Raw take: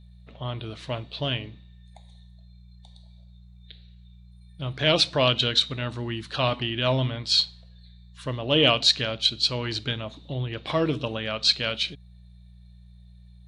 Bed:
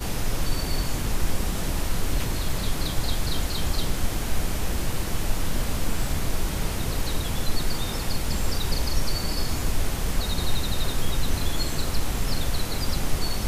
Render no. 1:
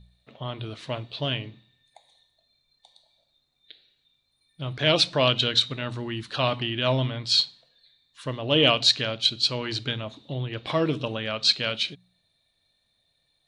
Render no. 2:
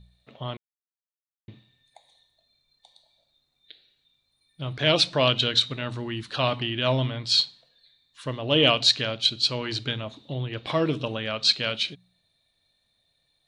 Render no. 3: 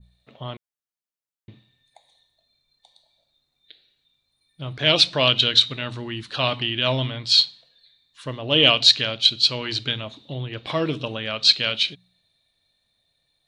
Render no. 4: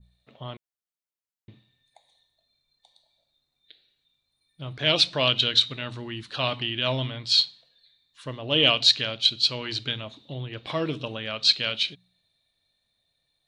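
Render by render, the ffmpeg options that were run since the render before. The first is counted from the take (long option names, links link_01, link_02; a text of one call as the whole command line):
ffmpeg -i in.wav -af "bandreject=frequency=60:width_type=h:width=4,bandreject=frequency=120:width_type=h:width=4,bandreject=frequency=180:width_type=h:width=4" out.wav
ffmpeg -i in.wav -filter_complex "[0:a]asplit=3[link_01][link_02][link_03];[link_01]atrim=end=0.57,asetpts=PTS-STARTPTS,afade=type=out:start_time=0.566:duration=0.004:curve=hsin[link_04];[link_02]atrim=start=0.57:end=1.48,asetpts=PTS-STARTPTS,volume=0[link_05];[link_03]atrim=start=1.48,asetpts=PTS-STARTPTS,afade=type=in:duration=0.004:curve=hsin[link_06];[link_04][link_05][link_06]concat=n=3:v=0:a=1" out.wav
ffmpeg -i in.wav -af "adynamicequalizer=threshold=0.0178:dfrequency=3400:dqfactor=0.78:tfrequency=3400:tqfactor=0.78:attack=5:release=100:ratio=0.375:range=3:mode=boostabove:tftype=bell" out.wav
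ffmpeg -i in.wav -af "volume=-4dB" out.wav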